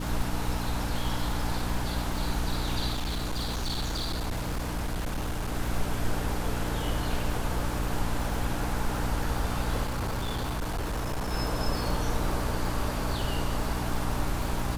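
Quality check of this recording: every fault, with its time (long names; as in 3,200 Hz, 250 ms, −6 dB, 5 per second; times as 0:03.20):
surface crackle 120 per second −33 dBFS
mains hum 60 Hz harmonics 5 −33 dBFS
0:02.93–0:05.55: clipping −26.5 dBFS
0:09.83–0:11.33: clipping −27 dBFS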